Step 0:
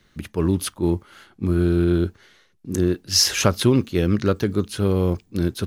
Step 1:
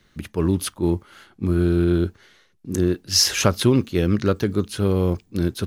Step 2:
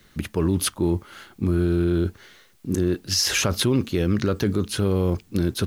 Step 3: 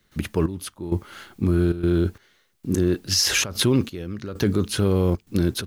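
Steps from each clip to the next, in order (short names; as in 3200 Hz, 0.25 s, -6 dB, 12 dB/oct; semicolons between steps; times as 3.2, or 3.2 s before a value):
nothing audible
in parallel at +1 dB: negative-ratio compressor -22 dBFS; on the sum: limiter -7 dBFS, peak gain reduction 8.5 dB; requantised 10-bit, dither triangular; gain -4.5 dB
step gate ".xxx....xxxxxxx" 131 bpm -12 dB; gain +1.5 dB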